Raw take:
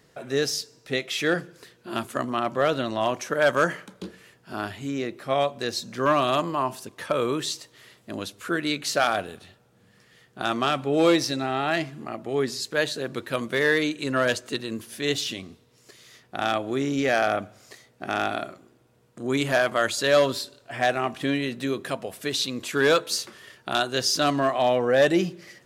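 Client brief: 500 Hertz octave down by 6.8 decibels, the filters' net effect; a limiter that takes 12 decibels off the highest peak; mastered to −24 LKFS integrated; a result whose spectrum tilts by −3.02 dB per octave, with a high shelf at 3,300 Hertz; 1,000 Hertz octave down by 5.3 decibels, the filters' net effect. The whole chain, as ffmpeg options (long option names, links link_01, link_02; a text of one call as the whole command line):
ffmpeg -i in.wav -af "equalizer=frequency=500:width_type=o:gain=-7,equalizer=frequency=1000:width_type=o:gain=-6,highshelf=frequency=3300:gain=6,volume=6.5dB,alimiter=limit=-12dB:level=0:latency=1" out.wav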